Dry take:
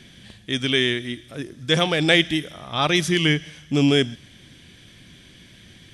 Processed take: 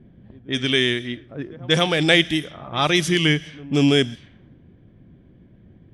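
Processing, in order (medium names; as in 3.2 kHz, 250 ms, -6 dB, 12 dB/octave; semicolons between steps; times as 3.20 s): reverse echo 181 ms -21.5 dB; level-controlled noise filter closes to 510 Hz, open at -18.5 dBFS; trim +1 dB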